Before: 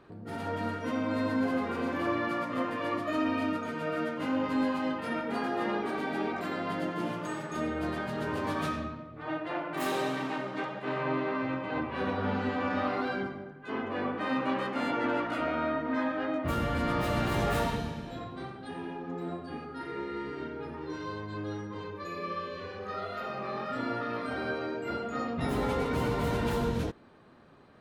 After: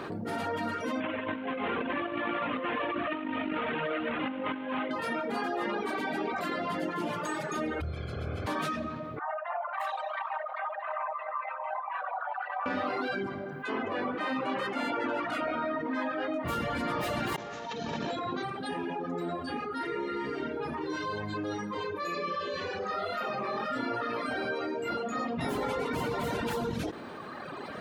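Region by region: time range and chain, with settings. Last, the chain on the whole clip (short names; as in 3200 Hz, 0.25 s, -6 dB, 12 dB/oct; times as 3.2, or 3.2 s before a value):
1–4.91 delta modulation 16 kbps, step -29.5 dBFS + negative-ratio compressor -32 dBFS, ratio -0.5
7.8–8.46 spectral limiter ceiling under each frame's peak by 26 dB + running mean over 47 samples + resonant low shelf 130 Hz +13.5 dB, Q 1.5
9.19–12.66 formant sharpening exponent 2 + steep high-pass 660 Hz 72 dB/oct
17.36–18.43 HPF 150 Hz 6 dB/oct + negative-ratio compressor -43 dBFS + careless resampling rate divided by 3×, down none, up filtered
22.13–22.91 steep low-pass 8200 Hz 72 dB/oct + tone controls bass 0 dB, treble +4 dB
whole clip: HPF 230 Hz 6 dB/oct; reverb removal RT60 1.3 s; fast leveller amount 70%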